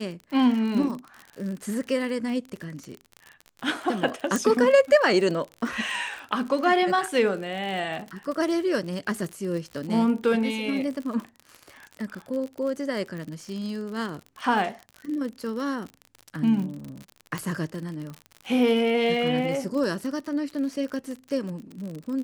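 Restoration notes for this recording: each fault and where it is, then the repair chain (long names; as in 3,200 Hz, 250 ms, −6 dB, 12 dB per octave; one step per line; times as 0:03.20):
surface crackle 55 per second −32 dBFS
0:04.36: click
0:13.18: click −27 dBFS
0:17.38: click −15 dBFS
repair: click removal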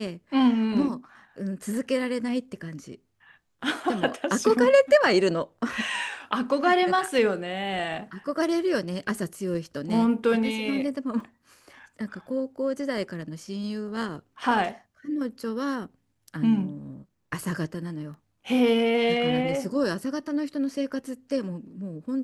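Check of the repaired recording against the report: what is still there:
0:13.18: click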